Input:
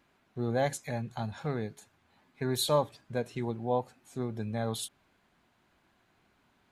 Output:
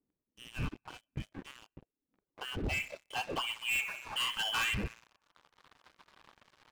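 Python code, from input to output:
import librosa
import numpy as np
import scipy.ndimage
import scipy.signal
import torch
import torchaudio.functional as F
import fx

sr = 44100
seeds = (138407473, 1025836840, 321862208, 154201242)

p1 = x + fx.echo_wet_bandpass(x, sr, ms=61, feedback_pct=67, hz=930.0, wet_db=-6.0, dry=0)
p2 = fx.dereverb_blind(p1, sr, rt60_s=0.97)
p3 = fx.rider(p2, sr, range_db=4, speed_s=2.0)
p4 = fx.freq_invert(p3, sr, carrier_hz=3200)
p5 = fx.dynamic_eq(p4, sr, hz=430.0, q=1.0, threshold_db=-54.0, ratio=4.0, max_db=-6)
p6 = fx.filter_sweep_lowpass(p5, sr, from_hz=290.0, to_hz=1100.0, start_s=1.91, end_s=3.96, q=2.7)
p7 = fx.leveller(p6, sr, passes=5)
p8 = fx.notch(p7, sr, hz=700.0, q=12.0)
y = p8 * 10.0 ** (2.0 / 20.0)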